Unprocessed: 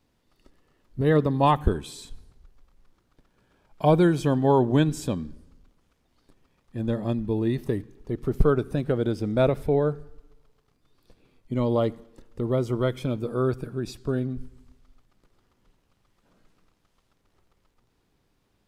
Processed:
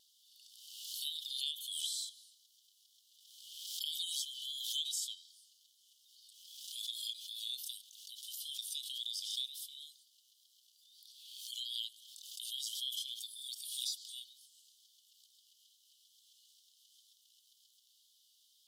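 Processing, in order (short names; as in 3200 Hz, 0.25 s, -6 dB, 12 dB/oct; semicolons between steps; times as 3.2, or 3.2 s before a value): Chebyshev high-pass 3000 Hz, order 8; compressor 3:1, threshold -51 dBFS, peak gain reduction 13 dB; wow and flutter 24 cents; backwards sustainer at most 40 dB/s; gain +12 dB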